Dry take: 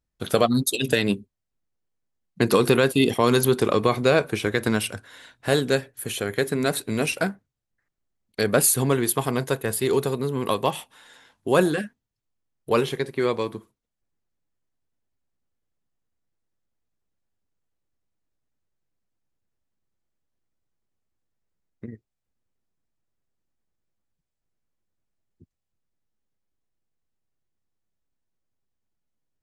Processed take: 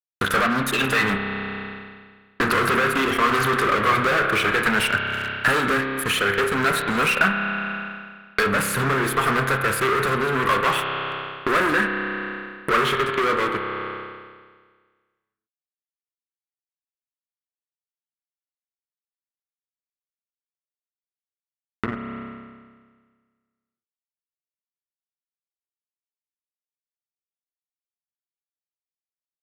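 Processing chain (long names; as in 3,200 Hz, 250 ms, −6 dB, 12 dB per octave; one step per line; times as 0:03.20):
low-shelf EQ 65 Hz −10.5 dB
fuzz pedal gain 34 dB, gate −40 dBFS
convolution reverb RT60 1.6 s, pre-delay 30 ms, DRR 5 dB
downward compressor 2.5 to 1, threshold −32 dBFS, peak gain reduction 14 dB
drawn EQ curve 850 Hz 0 dB, 1,300 Hz +15 dB, 5,700 Hz −4 dB
level +3 dB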